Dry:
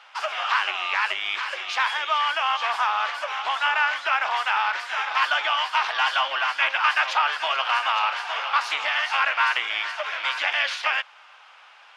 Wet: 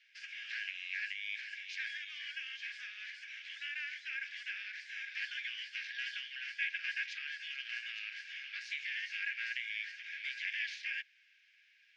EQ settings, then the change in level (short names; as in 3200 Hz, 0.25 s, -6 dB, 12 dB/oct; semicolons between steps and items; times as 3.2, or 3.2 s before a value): rippled Chebyshev high-pass 1600 Hz, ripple 6 dB; air absorption 100 m; -9.0 dB